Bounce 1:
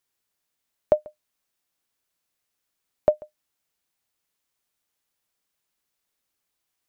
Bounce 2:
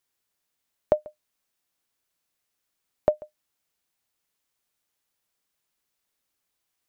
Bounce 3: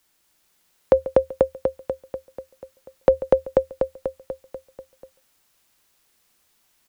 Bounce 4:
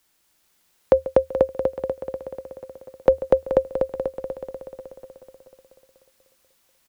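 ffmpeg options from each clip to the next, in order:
ffmpeg -i in.wav -af "acompressor=threshold=-17dB:ratio=2.5" out.wav
ffmpeg -i in.wav -af "afreqshift=-79,aecho=1:1:244|488|732|976|1220|1464|1708|1952:0.562|0.332|0.196|0.115|0.0681|0.0402|0.0237|0.014,alimiter=level_in=14dB:limit=-1dB:release=50:level=0:latency=1,volume=-1dB" out.wav
ffmpeg -i in.wav -af "aecho=1:1:429|858|1287|1716|2145:0.299|0.137|0.0632|0.0291|0.0134" out.wav

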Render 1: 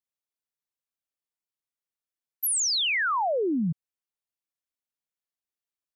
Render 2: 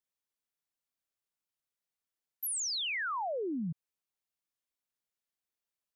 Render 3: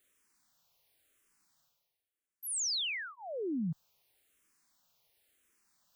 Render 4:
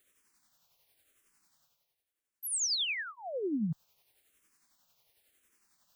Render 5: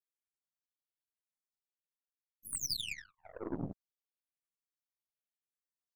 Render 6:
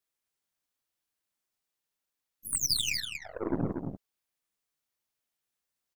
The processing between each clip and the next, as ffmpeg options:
ffmpeg -i in.wav -af "alimiter=level_in=7.5dB:limit=-24dB:level=0:latency=1,volume=-7.5dB" out.wav
ffmpeg -i in.wav -filter_complex "[0:a]areverse,acompressor=mode=upward:threshold=-55dB:ratio=2.5,areverse,asplit=2[link_01][link_02];[link_02]afreqshift=-0.94[link_03];[link_01][link_03]amix=inputs=2:normalize=1,volume=1.5dB" out.wav
ffmpeg -i in.wav -af "tremolo=f=11:d=0.41,volume=4dB" out.wav
ffmpeg -i in.wav -af "afftfilt=real='hypot(re,im)*cos(2*PI*random(0))':imag='hypot(re,im)*sin(2*PI*random(1))':win_size=512:overlap=0.75,aeval=exprs='0.0501*(cos(1*acos(clip(val(0)/0.0501,-1,1)))-cos(1*PI/2))+0.0112*(cos(2*acos(clip(val(0)/0.0501,-1,1)))-cos(2*PI/2))+0.00112*(cos(3*acos(clip(val(0)/0.0501,-1,1)))-cos(3*PI/2))+0.000562*(cos(6*acos(clip(val(0)/0.0501,-1,1)))-cos(6*PI/2))+0.00631*(cos(7*acos(clip(val(0)/0.0501,-1,1)))-cos(7*PI/2))':channel_layout=same" out.wav
ffmpeg -i in.wav -af "aecho=1:1:237:0.501,volume=8dB" out.wav

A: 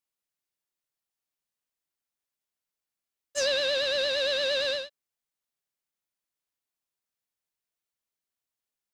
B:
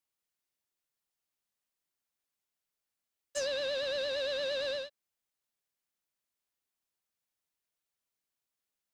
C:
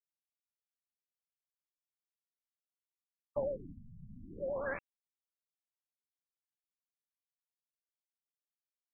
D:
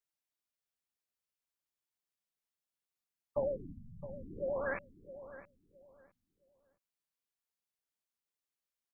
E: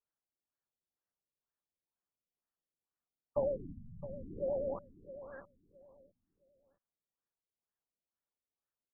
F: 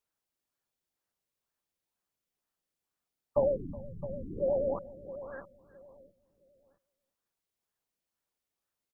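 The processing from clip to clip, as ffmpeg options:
ffmpeg -i in.wav -filter_complex "[0:a]acrossover=split=300|1200[link_01][link_02][link_03];[link_01]acompressor=threshold=-52dB:ratio=4[link_04];[link_02]acompressor=threshold=-35dB:ratio=4[link_05];[link_03]acompressor=threshold=-39dB:ratio=4[link_06];[link_04][link_05][link_06]amix=inputs=3:normalize=0" out.wav
ffmpeg -i in.wav -af "acrusher=bits=4:mix=0:aa=0.000001,afftfilt=real='re*lt(b*sr/1024,210*pow(4800/210,0.5+0.5*sin(2*PI*0.44*pts/sr)))':imag='im*lt(b*sr/1024,210*pow(4800/210,0.5+0.5*sin(2*PI*0.44*pts/sr)))':win_size=1024:overlap=0.75,volume=3dB" out.wav
ffmpeg -i in.wav -filter_complex "[0:a]asplit=2[link_01][link_02];[link_02]adelay=664,lowpass=frequency=1300:poles=1,volume=-13dB,asplit=2[link_03][link_04];[link_04]adelay=664,lowpass=frequency=1300:poles=1,volume=0.26,asplit=2[link_05][link_06];[link_06]adelay=664,lowpass=frequency=1300:poles=1,volume=0.26[link_07];[link_01][link_03][link_05][link_07]amix=inputs=4:normalize=0,volume=1.5dB" out.wav
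ffmpeg -i in.wav -af "afftfilt=real='re*lt(b*sr/1024,620*pow(2000/620,0.5+0.5*sin(2*PI*2.1*pts/sr)))':imag='im*lt(b*sr/1024,620*pow(2000/620,0.5+0.5*sin(2*PI*2.1*pts/sr)))':win_size=1024:overlap=0.75,volume=1dB" out.wav
ffmpeg -i in.wav -af "aecho=1:1:369:0.0944,volume=6dB" out.wav

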